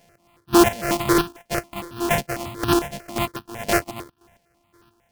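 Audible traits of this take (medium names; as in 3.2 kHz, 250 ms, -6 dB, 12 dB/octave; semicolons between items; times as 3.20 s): a buzz of ramps at a fixed pitch in blocks of 128 samples; chopped level 1.9 Hz, depth 65%, duty 30%; aliases and images of a low sample rate 3.8 kHz, jitter 20%; notches that jump at a steady rate 11 Hz 330–2100 Hz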